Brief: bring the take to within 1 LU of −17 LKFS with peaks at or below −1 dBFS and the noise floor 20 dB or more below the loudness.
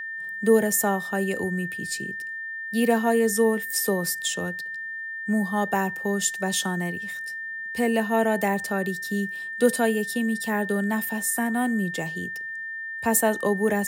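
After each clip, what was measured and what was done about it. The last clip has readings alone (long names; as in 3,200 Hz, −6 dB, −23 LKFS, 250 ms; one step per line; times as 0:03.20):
interfering tone 1,800 Hz; level of the tone −31 dBFS; integrated loudness −25.0 LKFS; sample peak −7.0 dBFS; target loudness −17.0 LKFS
→ notch filter 1,800 Hz, Q 30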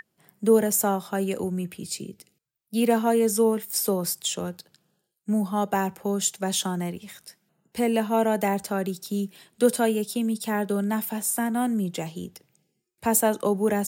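interfering tone none found; integrated loudness −25.5 LKFS; sample peak −7.0 dBFS; target loudness −17.0 LKFS
→ level +8.5 dB
brickwall limiter −1 dBFS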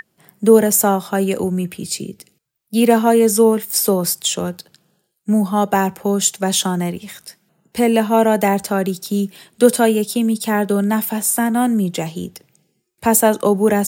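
integrated loudness −17.0 LKFS; sample peak −1.0 dBFS; background noise floor −68 dBFS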